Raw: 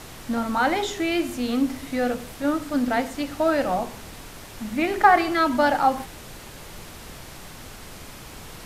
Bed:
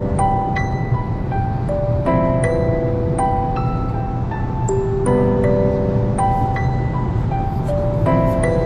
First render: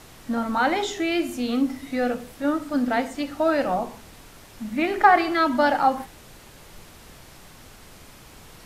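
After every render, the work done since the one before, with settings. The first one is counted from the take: noise print and reduce 6 dB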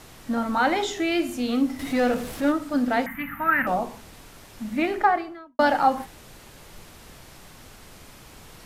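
1.79–2.52 s: power-law waveshaper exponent 0.7; 3.06–3.67 s: FFT filter 100 Hz 0 dB, 190 Hz +10 dB, 450 Hz -22 dB, 670 Hz -14 dB, 1 kHz +3 dB, 2 kHz +12 dB, 5 kHz -30 dB, 7.8 kHz -22 dB, 13 kHz +13 dB; 4.73–5.59 s: studio fade out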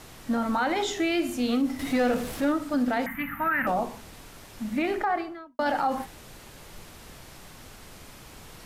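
peak limiter -17.5 dBFS, peak gain reduction 10.5 dB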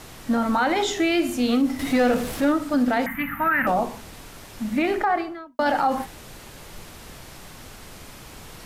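trim +4.5 dB

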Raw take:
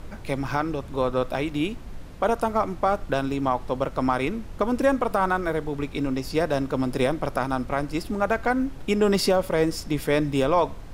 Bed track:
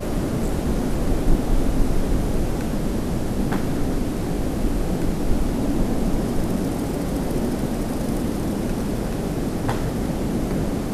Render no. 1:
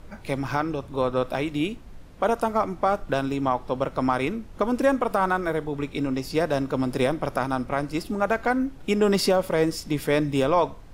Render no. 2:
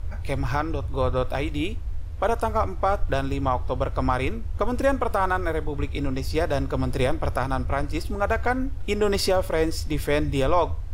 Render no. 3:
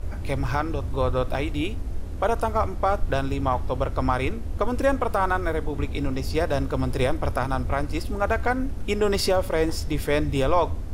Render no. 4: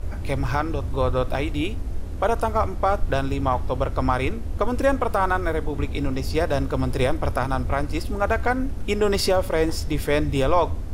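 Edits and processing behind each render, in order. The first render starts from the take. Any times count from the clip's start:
noise print and reduce 6 dB
resonant low shelf 120 Hz +13 dB, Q 3
add bed track -18.5 dB
trim +1.5 dB

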